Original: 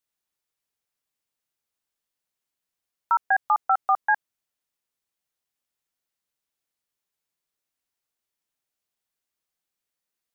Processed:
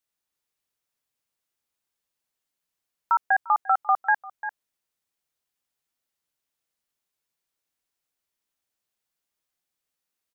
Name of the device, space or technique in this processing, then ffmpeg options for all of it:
ducked delay: -filter_complex "[0:a]asplit=3[a][b][c];[b]adelay=347,volume=-5.5dB[d];[c]apad=whole_len=471516[e];[d][e]sidechaincompress=threshold=-37dB:ratio=8:attack=6.4:release=325[f];[a][f]amix=inputs=2:normalize=0"

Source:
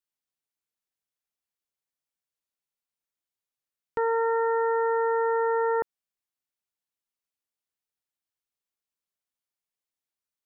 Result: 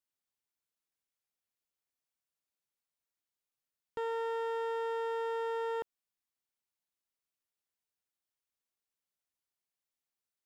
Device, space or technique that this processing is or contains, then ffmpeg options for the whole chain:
limiter into clipper: -filter_complex "[0:a]asettb=1/sr,asplit=3[a][b][c];[a]atrim=end=4.104[d];[b]atrim=start=4.1:end=5.73,asetpts=PTS-STARTPTS,afade=t=in:d=0.004:c=qsin,afade=t=out:st=1.626:d=0.004:c=qsin,bandreject=f=133.9:t=h:w=4,bandreject=f=267.8:t=h:w=4,bandreject=f=401.7:t=h:w=4,bandreject=f=535.6:t=h:w=4[e];[c]atrim=start=5.726[f];[d][e]acrossfade=d=0.004:c1=hsin:c2=qsin[g];[g][f]acrossfade=d=0.004:c1=qsin:c2=hsin,alimiter=level_in=2.5dB:limit=-24dB:level=0:latency=1,volume=-2.5dB,asoftclip=type=hard:threshold=-29dB,volume=-2dB"

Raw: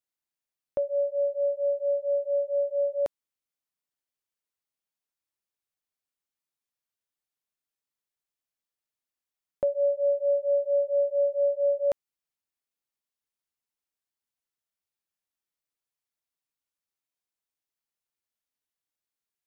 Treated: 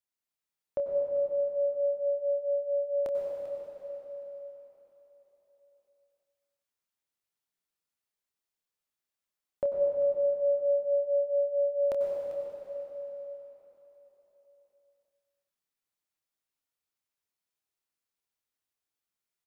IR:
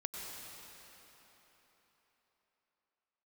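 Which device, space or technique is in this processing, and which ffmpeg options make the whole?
cave: -filter_complex "[0:a]asplit=2[a][b];[b]adelay=27,volume=-9.5dB[c];[a][c]amix=inputs=2:normalize=0,aecho=1:1:394:0.211[d];[1:a]atrim=start_sample=2205[e];[d][e]afir=irnorm=-1:irlink=0"

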